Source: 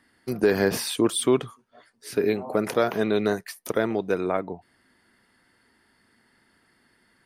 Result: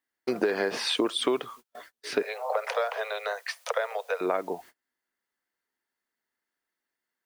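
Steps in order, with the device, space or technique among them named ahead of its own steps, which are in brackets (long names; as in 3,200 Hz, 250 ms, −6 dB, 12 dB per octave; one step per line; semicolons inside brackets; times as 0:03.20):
baby monitor (band-pass filter 390–4,200 Hz; downward compressor 10 to 1, threshold −31 dBFS, peak gain reduction 13.5 dB; white noise bed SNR 29 dB; noise gate −56 dBFS, range −32 dB)
0:02.22–0:04.21: Butterworth high-pass 470 Hz 96 dB per octave
level +8.5 dB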